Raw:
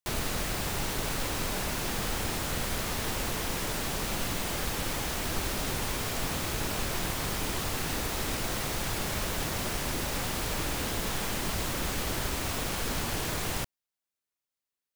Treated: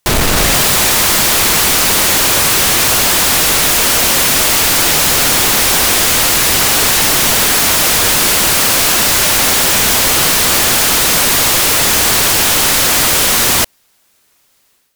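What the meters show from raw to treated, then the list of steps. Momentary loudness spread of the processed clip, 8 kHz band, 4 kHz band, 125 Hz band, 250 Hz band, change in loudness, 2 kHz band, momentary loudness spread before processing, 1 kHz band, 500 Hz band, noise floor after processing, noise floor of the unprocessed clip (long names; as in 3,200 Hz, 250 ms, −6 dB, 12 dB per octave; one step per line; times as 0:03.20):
0 LU, +25.0 dB, +23.0 dB, +11.5 dB, +14.5 dB, +23.0 dB, +21.0 dB, 0 LU, +19.0 dB, +17.0 dB, −56 dBFS, below −85 dBFS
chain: in parallel at −1 dB: brickwall limiter −26 dBFS, peak gain reduction 8.5 dB
on the sum: automatic gain control gain up to 11.5 dB
sine wavefolder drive 18 dB, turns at −3.5 dBFS
level −4 dB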